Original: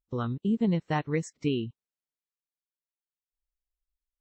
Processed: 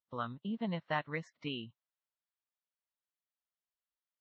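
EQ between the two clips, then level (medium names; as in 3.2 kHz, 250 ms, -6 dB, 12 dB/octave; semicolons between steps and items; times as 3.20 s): resonant low shelf 530 Hz -9 dB, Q 3; dynamic bell 900 Hz, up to -5 dB, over -37 dBFS, Q 1.3; cabinet simulation 120–3800 Hz, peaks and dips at 130 Hz -3 dB, 760 Hz -9 dB, 2.4 kHz -5 dB; 0.0 dB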